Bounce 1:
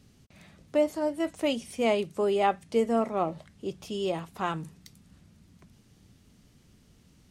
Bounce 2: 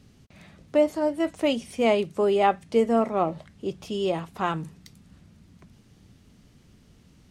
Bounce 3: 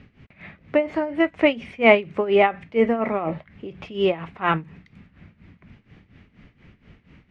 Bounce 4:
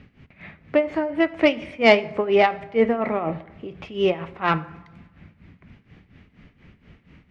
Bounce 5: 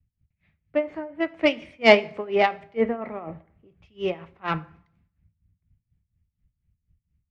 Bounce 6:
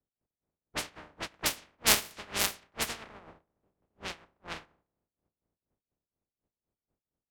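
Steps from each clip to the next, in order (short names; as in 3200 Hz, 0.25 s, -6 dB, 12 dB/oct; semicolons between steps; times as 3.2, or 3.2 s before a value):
high shelf 5700 Hz -6 dB; gain +4 dB
tremolo 4.2 Hz, depth 83%; synth low-pass 2200 Hz, resonance Q 2.8; gain +7 dB
self-modulated delay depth 0.064 ms; plate-style reverb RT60 1.1 s, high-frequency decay 0.55×, DRR 15.5 dB
three-band expander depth 100%; gain -8 dB
spectral contrast lowered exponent 0.1; low-pass opened by the level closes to 530 Hz, open at -17.5 dBFS; gain -8.5 dB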